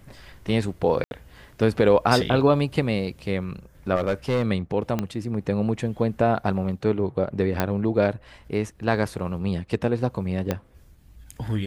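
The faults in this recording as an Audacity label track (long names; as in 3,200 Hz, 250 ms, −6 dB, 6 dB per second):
1.040000	1.110000	drop-out 71 ms
3.950000	4.450000	clipping −18 dBFS
4.990000	4.990000	click −12 dBFS
7.600000	7.600000	click −8 dBFS
10.510000	10.510000	click −10 dBFS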